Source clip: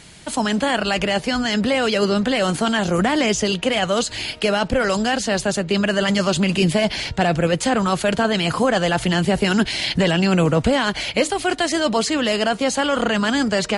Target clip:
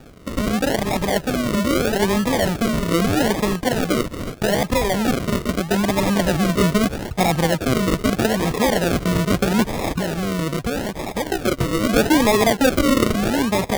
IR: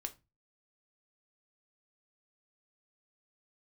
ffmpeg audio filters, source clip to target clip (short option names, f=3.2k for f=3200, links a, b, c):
-filter_complex "[0:a]asettb=1/sr,asplit=3[a][b][c];[a]atrim=end=9.934[d];[b]atrim=start=9.93:end=11.27,asetpts=PTS-STARTPTS,afade=t=in:d=0.004:c=qsin,afade=t=out:st=1.336:d=0.004:c=qsin,acompressor=threshold=-20dB:ratio=6[e];[c]atrim=start=11.266[f];[d][e]acrossfade=d=0.004:c1=hsin:c2=qsin[g];[g][f]acrossfade=d=0.004:c1=qsin:c2=hsin,asettb=1/sr,asplit=3[h][i][j];[h]atrim=end=11.894[k];[i]atrim=start=11.89:end=13.05,asetpts=PTS-STARTPTS,afade=t=in:d=0.004:c=qsin,afade=t=out:st=1.156:d=0.004:c=qsin,equalizer=f=360:t=o:w=1.1:g=8.5[l];[j]atrim=start=13.046[m];[k][l]acrossfade=d=0.004:c1=hsin:c2=qsin[n];[n][m]acrossfade=d=0.004:c1=qsin:c2=hsin,acrusher=samples=42:mix=1:aa=0.000001:lfo=1:lforange=25.2:lforate=0.79"